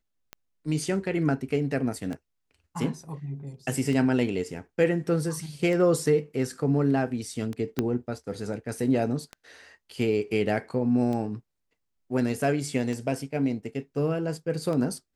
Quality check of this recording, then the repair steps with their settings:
scratch tick 33 1/3 rpm −21 dBFS
0:07.79: click −12 dBFS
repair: click removal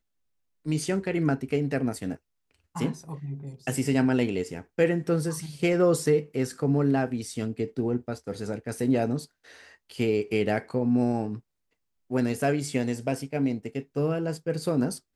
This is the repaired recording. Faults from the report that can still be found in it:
0:07.79: click

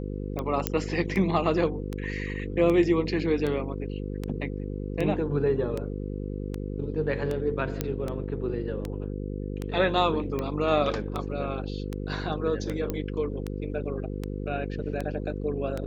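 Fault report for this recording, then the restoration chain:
mains buzz 50 Hz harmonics 10 −33 dBFS
scratch tick 78 rpm −18 dBFS
0:00.67: click −7 dBFS
0:07.81: click −12 dBFS
0:12.90: click −16 dBFS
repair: click removal
hum removal 50 Hz, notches 10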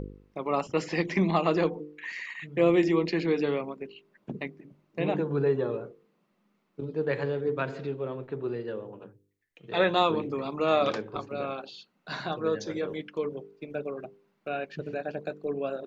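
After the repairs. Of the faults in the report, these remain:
none of them is left

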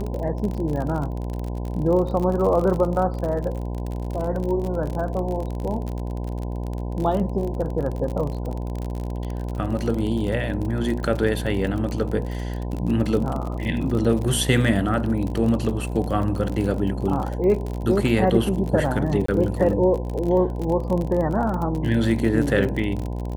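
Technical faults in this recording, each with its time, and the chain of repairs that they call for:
mains buzz 60 Hz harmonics 17 −28 dBFS
surface crackle 44 per second −27 dBFS
0:19.26–0:19.28: drop-out 24 ms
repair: click removal
hum removal 60 Hz, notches 17
repair the gap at 0:19.26, 24 ms

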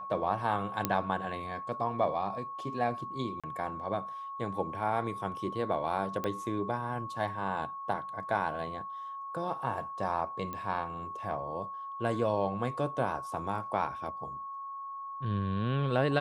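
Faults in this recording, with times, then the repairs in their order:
whistle 1,100 Hz −38 dBFS
0:00.85: click −11 dBFS
0:03.40–0:03.44: drop-out 36 ms
0:06.24: click −20 dBFS
0:10.53: click −25 dBFS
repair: click removal
notch filter 1,100 Hz, Q 30
repair the gap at 0:03.40, 36 ms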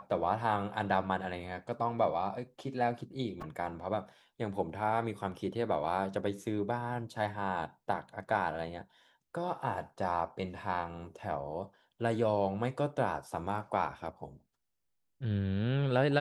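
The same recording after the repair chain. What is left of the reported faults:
none of them is left

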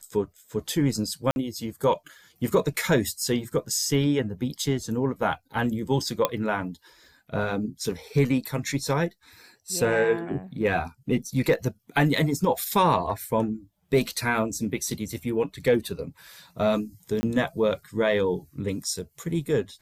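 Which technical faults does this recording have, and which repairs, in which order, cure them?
0:01.31–0:01.36: drop-out 51 ms
0:06.25: click −8 dBFS
0:17.21–0:17.23: drop-out 20 ms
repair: click removal
repair the gap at 0:01.31, 51 ms
repair the gap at 0:17.21, 20 ms

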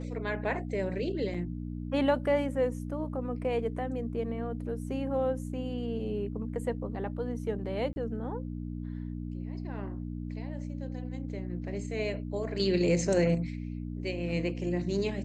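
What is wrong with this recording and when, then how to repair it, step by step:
mains hum 60 Hz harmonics 5 −37 dBFS
0:01.34–0:01.35: drop-out 5.3 ms
0:07.93–0:07.96: drop-out 31 ms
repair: hum removal 60 Hz, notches 5
repair the gap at 0:01.34, 5.3 ms
repair the gap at 0:07.93, 31 ms

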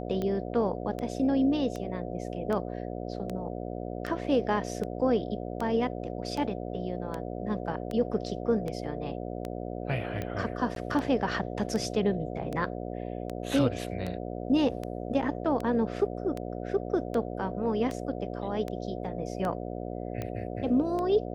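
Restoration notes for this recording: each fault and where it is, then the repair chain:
mains buzz 60 Hz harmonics 12 −36 dBFS
scratch tick 78 rpm −21 dBFS
0:10.75–0:10.76: drop-out 12 ms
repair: click removal
hum removal 60 Hz, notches 12
repair the gap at 0:10.75, 12 ms

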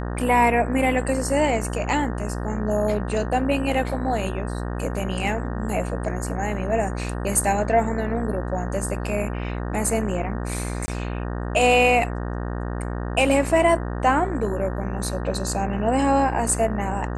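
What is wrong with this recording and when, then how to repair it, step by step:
mains buzz 60 Hz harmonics 31 −28 dBFS
0:10.86–0:10.88: drop-out 20 ms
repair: hum removal 60 Hz, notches 31
repair the gap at 0:10.86, 20 ms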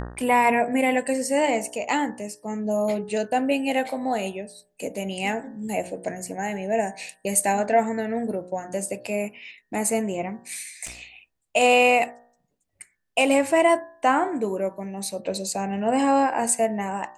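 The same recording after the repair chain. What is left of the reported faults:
none of them is left

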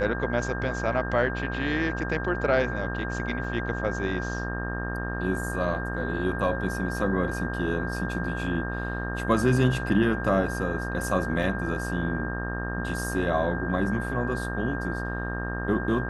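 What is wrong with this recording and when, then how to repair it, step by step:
mains buzz 60 Hz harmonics 30 −32 dBFS
whistle 1,600 Hz −34 dBFS
0:03.44: drop-out 3.3 ms
0:11.43: drop-out 2.1 ms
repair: notch filter 1,600 Hz, Q 30
hum removal 60 Hz, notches 30
repair the gap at 0:03.44, 3.3 ms
repair the gap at 0:11.43, 2.1 ms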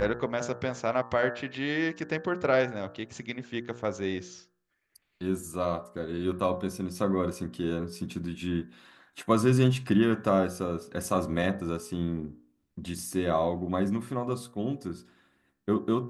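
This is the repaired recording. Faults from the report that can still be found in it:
none of them is left

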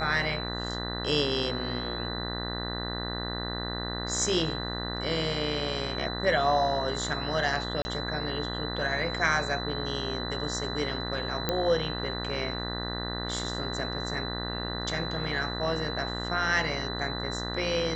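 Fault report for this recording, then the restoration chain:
mains buzz 60 Hz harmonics 33 −35 dBFS
whistle 4,000 Hz −36 dBFS
0:07.82–0:07.85: drop-out 30 ms
0:11.49: click −12 dBFS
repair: click removal
notch filter 4,000 Hz, Q 30
hum removal 60 Hz, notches 33
repair the gap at 0:07.82, 30 ms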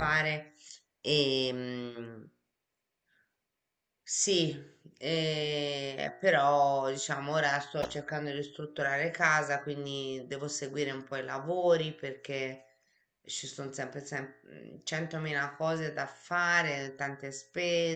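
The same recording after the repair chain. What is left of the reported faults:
none of them is left

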